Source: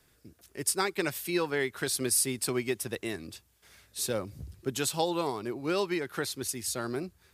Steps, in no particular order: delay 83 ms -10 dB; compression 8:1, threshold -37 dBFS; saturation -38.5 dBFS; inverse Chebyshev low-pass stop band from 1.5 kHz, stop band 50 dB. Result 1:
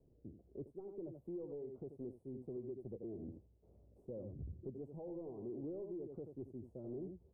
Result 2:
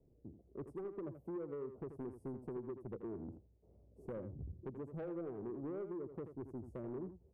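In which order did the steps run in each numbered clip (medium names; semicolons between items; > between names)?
delay > compression > saturation > inverse Chebyshev low-pass; inverse Chebyshev low-pass > compression > saturation > delay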